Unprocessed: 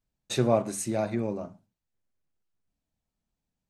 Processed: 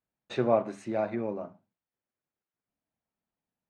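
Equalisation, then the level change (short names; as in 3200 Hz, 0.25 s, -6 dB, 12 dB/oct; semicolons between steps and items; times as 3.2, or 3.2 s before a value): HPF 340 Hz 6 dB/oct; LPF 2200 Hz 12 dB/oct; +1.0 dB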